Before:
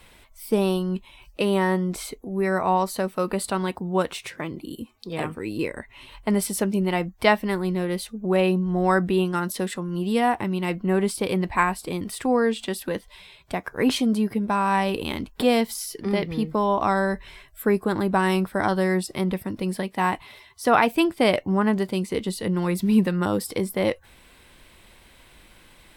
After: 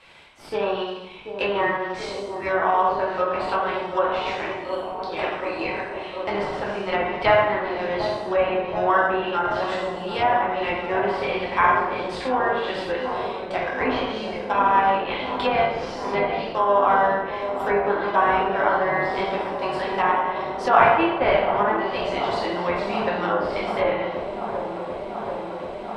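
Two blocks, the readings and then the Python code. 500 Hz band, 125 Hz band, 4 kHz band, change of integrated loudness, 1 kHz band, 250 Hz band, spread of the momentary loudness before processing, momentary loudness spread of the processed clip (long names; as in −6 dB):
+2.5 dB, −9.0 dB, 0.0 dB, +1.0 dB, +6.0 dB, −7.5 dB, 10 LU, 10 LU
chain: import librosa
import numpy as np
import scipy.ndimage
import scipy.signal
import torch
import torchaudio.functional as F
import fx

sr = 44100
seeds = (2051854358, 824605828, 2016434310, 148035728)

p1 = scipy.signal.sosfilt(scipy.signal.butter(2, 700.0, 'highpass', fs=sr, output='sos'), x)
p2 = fx.rev_plate(p1, sr, seeds[0], rt60_s=0.91, hf_ratio=0.95, predelay_ms=0, drr_db=-5.5)
p3 = fx.sample_hold(p2, sr, seeds[1], rate_hz=2200.0, jitter_pct=0)
p4 = p2 + (p3 * 10.0 ** (-9.5 / 20.0))
p5 = fx.env_lowpass_down(p4, sr, base_hz=1900.0, full_db=-18.5)
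p6 = scipy.signal.sosfilt(scipy.signal.butter(2, 4400.0, 'lowpass', fs=sr, output='sos'), p5)
y = p6 + fx.echo_wet_lowpass(p6, sr, ms=735, feedback_pct=84, hz=890.0, wet_db=-8, dry=0)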